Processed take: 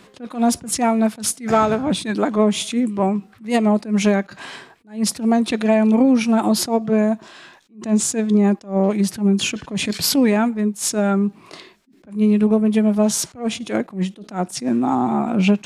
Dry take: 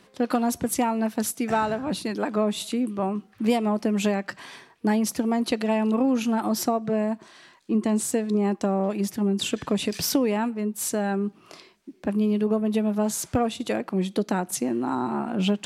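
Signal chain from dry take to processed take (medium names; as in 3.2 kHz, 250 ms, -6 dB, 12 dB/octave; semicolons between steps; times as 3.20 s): formant shift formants -2 st; attacks held to a fixed rise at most 200 dB/s; trim +8 dB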